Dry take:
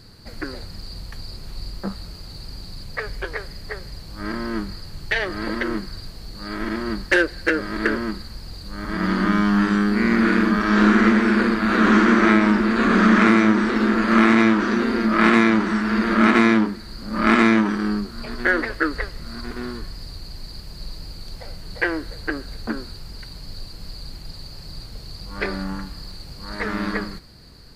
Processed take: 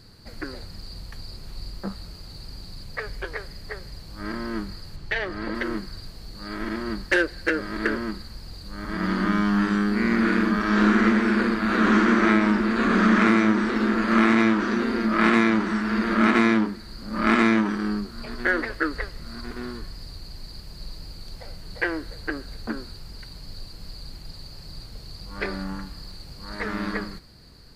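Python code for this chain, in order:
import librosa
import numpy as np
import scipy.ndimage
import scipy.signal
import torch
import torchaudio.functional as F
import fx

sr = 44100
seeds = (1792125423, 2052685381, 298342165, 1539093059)

y = fx.lowpass(x, sr, hz=3700.0, slope=6, at=(4.96, 5.55))
y = y * 10.0 ** (-3.5 / 20.0)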